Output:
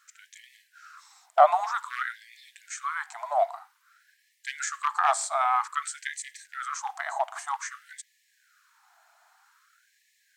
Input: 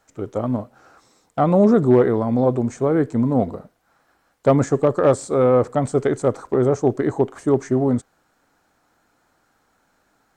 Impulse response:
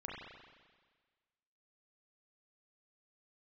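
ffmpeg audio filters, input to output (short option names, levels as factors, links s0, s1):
-filter_complex "[0:a]asplit=2[s0][s1];[1:a]atrim=start_sample=2205,atrim=end_sample=6174[s2];[s1][s2]afir=irnorm=-1:irlink=0,volume=0.106[s3];[s0][s3]amix=inputs=2:normalize=0,afftfilt=real='re*gte(b*sr/1024,600*pow(1700/600,0.5+0.5*sin(2*PI*0.52*pts/sr)))':imag='im*gte(b*sr/1024,600*pow(1700/600,0.5+0.5*sin(2*PI*0.52*pts/sr)))':win_size=1024:overlap=0.75,volume=1.41"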